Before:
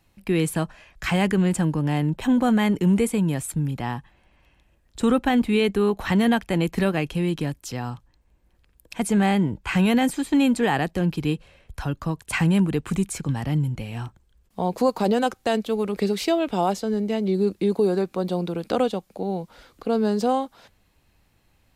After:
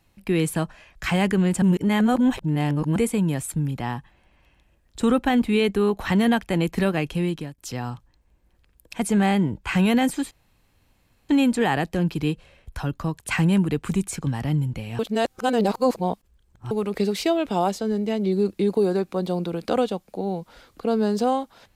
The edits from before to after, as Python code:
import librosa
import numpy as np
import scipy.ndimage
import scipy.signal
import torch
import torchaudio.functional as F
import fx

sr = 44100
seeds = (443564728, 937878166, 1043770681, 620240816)

y = fx.edit(x, sr, fx.reverse_span(start_s=1.62, length_s=1.34),
    fx.fade_out_to(start_s=7.24, length_s=0.34, floor_db=-19.0),
    fx.insert_room_tone(at_s=10.31, length_s=0.98),
    fx.reverse_span(start_s=14.01, length_s=1.72), tone=tone)